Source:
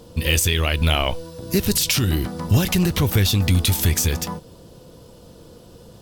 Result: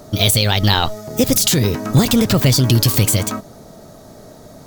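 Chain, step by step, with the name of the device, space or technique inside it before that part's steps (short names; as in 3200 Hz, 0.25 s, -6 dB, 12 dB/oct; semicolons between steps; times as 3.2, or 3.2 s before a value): nightcore (varispeed +29%); bell 65 Hz -5.5 dB 0.85 oct; gain +5 dB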